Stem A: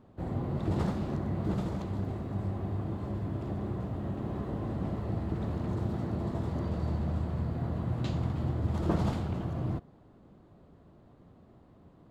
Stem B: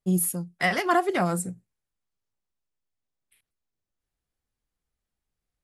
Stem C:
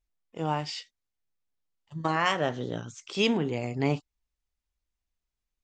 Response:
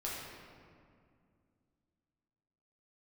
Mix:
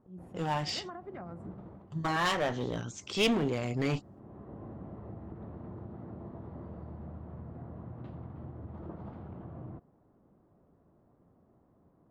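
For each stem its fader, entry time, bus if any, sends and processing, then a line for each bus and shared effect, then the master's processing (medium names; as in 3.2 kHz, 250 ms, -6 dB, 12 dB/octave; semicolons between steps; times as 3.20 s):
-6.5 dB, 0.00 s, bus A, no send, bass shelf 130 Hz -6 dB; auto duck -12 dB, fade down 0.40 s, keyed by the third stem
-5.5 dB, 0.00 s, bus A, no send, compression, threshold -30 dBFS, peak gain reduction 13 dB; slow attack 198 ms
+1.0 dB, 0.00 s, no bus, no send, gate -57 dBFS, range -21 dB; one-sided clip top -29 dBFS
bus A: 0.0 dB, low-pass 1.4 kHz 12 dB/octave; compression 6:1, threshold -40 dBFS, peak gain reduction 9.5 dB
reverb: none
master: none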